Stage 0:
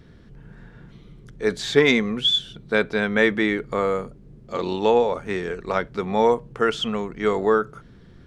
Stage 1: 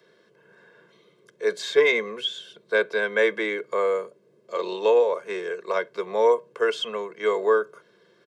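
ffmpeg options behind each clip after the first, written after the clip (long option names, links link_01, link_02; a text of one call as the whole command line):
ffmpeg -i in.wav -filter_complex "[0:a]highpass=frequency=260:width=0.5412,highpass=frequency=260:width=1.3066,aecho=1:1:1.9:0.98,acrossover=split=340|430|3000[link_01][link_02][link_03][link_04];[link_04]alimiter=limit=-20.5dB:level=0:latency=1:release=274[link_05];[link_01][link_02][link_03][link_05]amix=inputs=4:normalize=0,volume=-5dB" out.wav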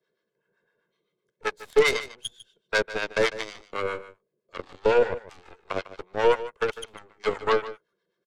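ffmpeg -i in.wav -filter_complex "[0:a]aeval=exprs='0.422*(cos(1*acos(clip(val(0)/0.422,-1,1)))-cos(1*PI/2))+0.0106*(cos(3*acos(clip(val(0)/0.422,-1,1)))-cos(3*PI/2))+0.0473*(cos(4*acos(clip(val(0)/0.422,-1,1)))-cos(4*PI/2))+0.075*(cos(5*acos(clip(val(0)/0.422,-1,1)))-cos(5*PI/2))+0.119*(cos(7*acos(clip(val(0)/0.422,-1,1)))-cos(7*PI/2))':channel_layout=same,acrossover=split=710[link_01][link_02];[link_01]aeval=exprs='val(0)*(1-0.7/2+0.7/2*cos(2*PI*7.8*n/s))':channel_layout=same[link_03];[link_02]aeval=exprs='val(0)*(1-0.7/2-0.7/2*cos(2*PI*7.8*n/s))':channel_layout=same[link_04];[link_03][link_04]amix=inputs=2:normalize=0,aecho=1:1:150:0.178" out.wav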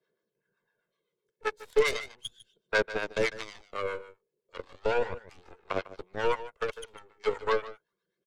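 ffmpeg -i in.wav -af "aphaser=in_gain=1:out_gain=1:delay=2.3:decay=0.42:speed=0.35:type=sinusoidal,volume=-6dB" out.wav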